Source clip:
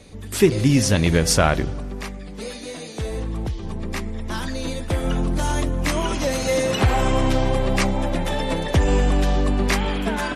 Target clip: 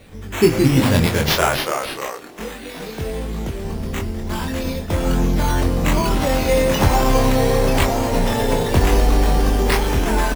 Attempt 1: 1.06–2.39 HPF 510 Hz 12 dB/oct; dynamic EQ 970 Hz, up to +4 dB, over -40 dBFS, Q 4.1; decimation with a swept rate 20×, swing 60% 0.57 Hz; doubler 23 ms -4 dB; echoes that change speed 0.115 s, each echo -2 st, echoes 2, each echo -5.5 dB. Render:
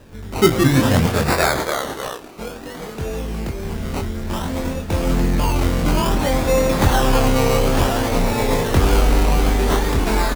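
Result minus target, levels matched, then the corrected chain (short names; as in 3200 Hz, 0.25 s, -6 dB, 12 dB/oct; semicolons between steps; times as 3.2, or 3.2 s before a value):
decimation with a swept rate: distortion +6 dB
1.06–2.39 HPF 510 Hz 12 dB/oct; dynamic EQ 970 Hz, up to +4 dB, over -40 dBFS, Q 4.1; decimation with a swept rate 7×, swing 60% 0.57 Hz; doubler 23 ms -4 dB; echoes that change speed 0.115 s, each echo -2 st, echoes 2, each echo -5.5 dB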